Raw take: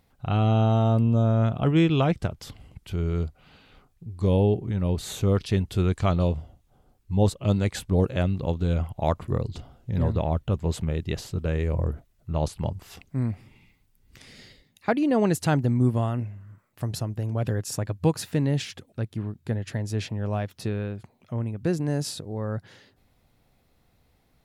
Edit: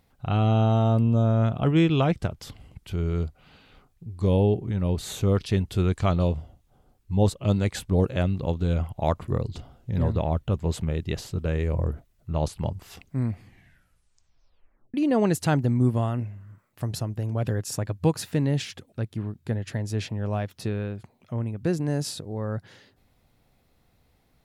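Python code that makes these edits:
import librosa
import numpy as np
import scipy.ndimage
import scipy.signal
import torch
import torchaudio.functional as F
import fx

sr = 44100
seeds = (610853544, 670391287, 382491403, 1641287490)

y = fx.edit(x, sr, fx.tape_stop(start_s=13.32, length_s=1.62), tone=tone)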